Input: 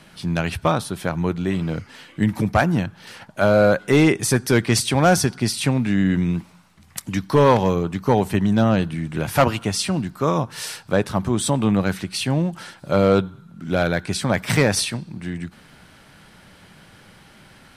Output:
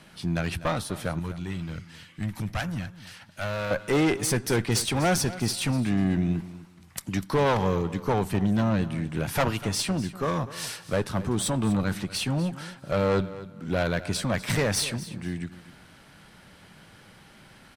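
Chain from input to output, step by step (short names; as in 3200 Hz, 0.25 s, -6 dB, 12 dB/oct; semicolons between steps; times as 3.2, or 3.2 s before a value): tube stage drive 16 dB, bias 0.45; 1.19–3.71 bell 420 Hz -11 dB 2.8 oct; feedback echo 0.246 s, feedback 22%, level -16 dB; gain -2 dB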